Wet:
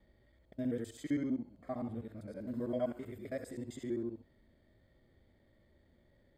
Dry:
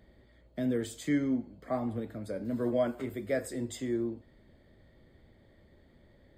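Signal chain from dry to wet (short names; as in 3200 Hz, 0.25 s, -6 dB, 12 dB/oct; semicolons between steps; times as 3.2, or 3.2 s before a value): local time reversal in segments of 65 ms; harmonic-percussive split percussive -9 dB; gain -4.5 dB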